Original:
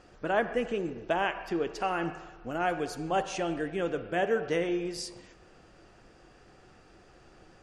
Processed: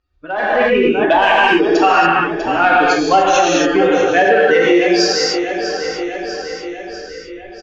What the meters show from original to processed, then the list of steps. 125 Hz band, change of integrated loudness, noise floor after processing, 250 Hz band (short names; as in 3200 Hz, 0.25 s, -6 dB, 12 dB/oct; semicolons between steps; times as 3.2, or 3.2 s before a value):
+9.5 dB, +18.0 dB, -35 dBFS, +17.5 dB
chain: per-bin expansion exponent 2; steep low-pass 6900 Hz 96 dB/oct; bell 150 Hz -11 dB 0.27 oct; on a send: feedback echo 0.646 s, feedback 54%, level -14 dB; on the sum: overdrive pedal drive 10 dB, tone 1200 Hz, clips at -17 dBFS; non-linear reverb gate 0.31 s flat, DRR -4.5 dB; in parallel at +2 dB: compressor, threshold -42 dBFS, peak gain reduction 18.5 dB; on the sum: limiter -20.5 dBFS, peak gain reduction 6 dB; AGC gain up to 15 dB; high shelf 2100 Hz +10.5 dB; gain +1 dB